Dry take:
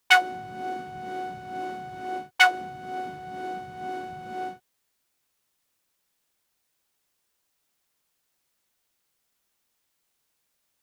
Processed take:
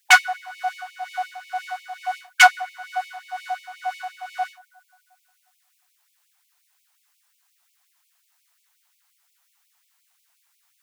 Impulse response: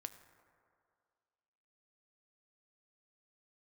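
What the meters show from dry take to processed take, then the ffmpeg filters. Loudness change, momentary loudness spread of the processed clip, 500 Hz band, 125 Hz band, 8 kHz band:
+5.0 dB, 20 LU, +1.0 dB, under -40 dB, +11.5 dB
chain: -filter_complex "[0:a]aeval=exprs='0.841*sin(PI/2*2.51*val(0)/0.841)':c=same,asplit=2[s0][s1];[1:a]atrim=start_sample=2205,lowpass=2500[s2];[s1][s2]afir=irnorm=-1:irlink=0,volume=0.708[s3];[s0][s3]amix=inputs=2:normalize=0,afftfilt=real='re*gte(b*sr/1024,630*pow(2200/630,0.5+0.5*sin(2*PI*5.6*pts/sr)))':imag='im*gte(b*sr/1024,630*pow(2200/630,0.5+0.5*sin(2*PI*5.6*pts/sr)))':win_size=1024:overlap=0.75,volume=0.668"

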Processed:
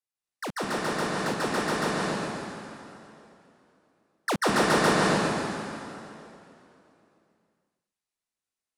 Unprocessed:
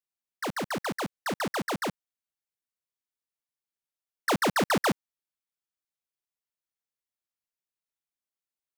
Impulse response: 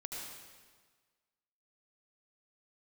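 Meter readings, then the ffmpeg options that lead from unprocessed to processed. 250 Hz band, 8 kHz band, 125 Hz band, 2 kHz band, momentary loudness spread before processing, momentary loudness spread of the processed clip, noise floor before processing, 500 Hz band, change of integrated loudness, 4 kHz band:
+4.0 dB, +4.0 dB, +5.0 dB, +4.0 dB, 10 LU, 19 LU, under -85 dBFS, +5.0 dB, +2.5 dB, +4.0 dB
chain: -filter_complex "[0:a]bandreject=f=3200:w=27[s0];[1:a]atrim=start_sample=2205,asetrate=22491,aresample=44100[s1];[s0][s1]afir=irnorm=-1:irlink=0"

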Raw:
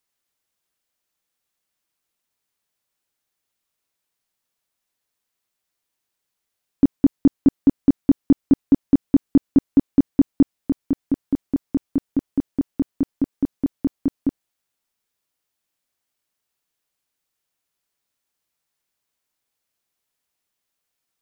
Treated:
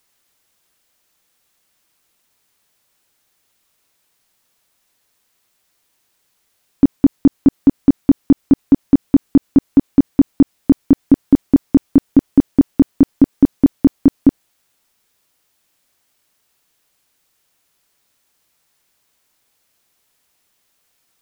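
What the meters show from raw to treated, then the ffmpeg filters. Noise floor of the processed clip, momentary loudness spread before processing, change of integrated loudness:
-66 dBFS, 7 LU, +6.5 dB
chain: -af "alimiter=level_in=5.96:limit=0.891:release=50:level=0:latency=1,volume=0.891"

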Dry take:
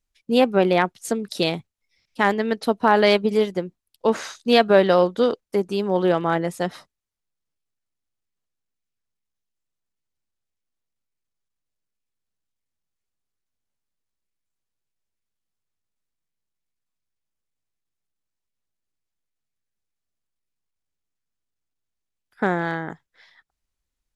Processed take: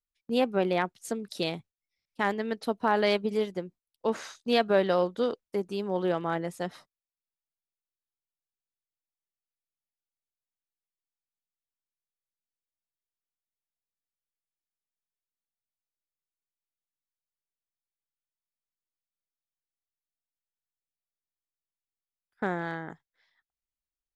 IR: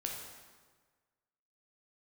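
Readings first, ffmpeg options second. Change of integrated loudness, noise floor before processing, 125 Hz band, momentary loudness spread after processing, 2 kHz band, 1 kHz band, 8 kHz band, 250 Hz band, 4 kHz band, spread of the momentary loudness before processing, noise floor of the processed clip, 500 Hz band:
-8.5 dB, -82 dBFS, -8.5 dB, 12 LU, -8.5 dB, -8.5 dB, no reading, -8.5 dB, -8.5 dB, 12 LU, under -85 dBFS, -8.5 dB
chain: -af "agate=range=0.355:threshold=0.00708:ratio=16:detection=peak,volume=0.376"

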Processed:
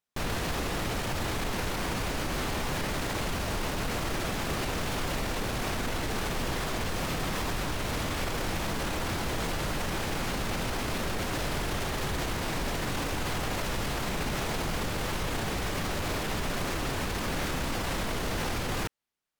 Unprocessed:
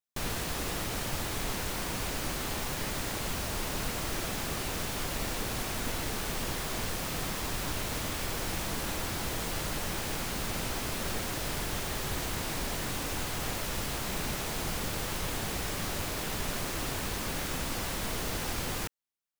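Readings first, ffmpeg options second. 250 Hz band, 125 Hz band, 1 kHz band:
+4.0 dB, +4.0 dB, +4.0 dB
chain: -af "aemphasis=mode=reproduction:type=cd,alimiter=level_in=2.11:limit=0.0631:level=0:latency=1:release=23,volume=0.473,volume=2.51"

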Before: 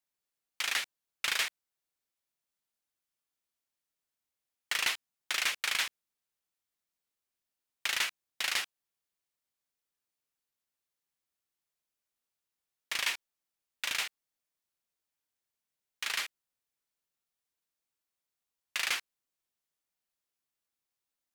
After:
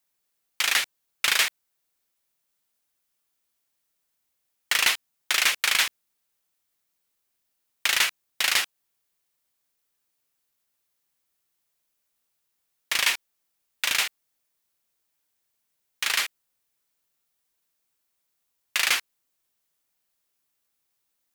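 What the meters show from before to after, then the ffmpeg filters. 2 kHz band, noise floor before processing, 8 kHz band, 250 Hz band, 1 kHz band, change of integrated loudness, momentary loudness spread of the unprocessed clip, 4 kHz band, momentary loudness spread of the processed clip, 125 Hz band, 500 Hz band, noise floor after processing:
+8.5 dB, under -85 dBFS, +10.0 dB, +8.5 dB, +8.5 dB, +9.0 dB, 9 LU, +9.0 dB, 9 LU, no reading, +8.5 dB, -77 dBFS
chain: -af "highshelf=f=11000:g=6,volume=2.66"

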